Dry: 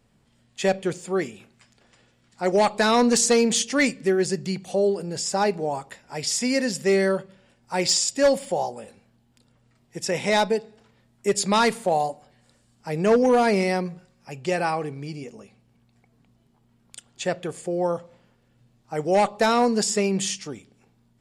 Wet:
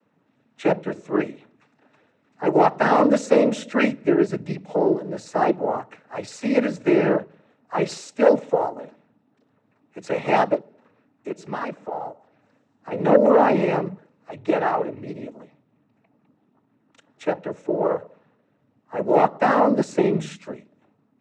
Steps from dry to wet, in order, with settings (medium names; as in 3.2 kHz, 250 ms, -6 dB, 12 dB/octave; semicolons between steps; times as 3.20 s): three-band isolator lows -23 dB, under 170 Hz, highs -20 dB, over 2.1 kHz; 10.54–12.91 s: compression 2:1, threshold -38 dBFS, peak gain reduction 12 dB; noise-vocoded speech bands 12; trim +3.5 dB